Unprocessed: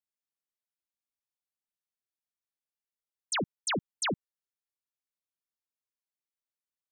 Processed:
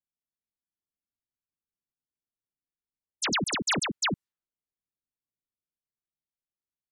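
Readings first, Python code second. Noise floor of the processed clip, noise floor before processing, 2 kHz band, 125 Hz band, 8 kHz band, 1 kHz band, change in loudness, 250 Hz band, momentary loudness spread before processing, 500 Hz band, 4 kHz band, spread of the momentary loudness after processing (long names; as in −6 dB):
below −85 dBFS, below −85 dBFS, +6.0 dB, +4.5 dB, +5.0 dB, +3.5 dB, +5.0 dB, +4.5 dB, 2 LU, 0.0 dB, +6.5 dB, 5 LU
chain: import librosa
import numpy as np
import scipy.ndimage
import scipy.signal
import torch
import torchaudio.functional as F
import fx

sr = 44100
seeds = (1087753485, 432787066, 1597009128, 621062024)

y = fx.env_lowpass(x, sr, base_hz=470.0, full_db=-32.0)
y = fx.peak_eq(y, sr, hz=520.0, db=-10.0, octaves=1.0)
y = fx.echo_pitch(y, sr, ms=434, semitones=3, count=2, db_per_echo=-3.0)
y = y * 10.0 ** (4.5 / 20.0)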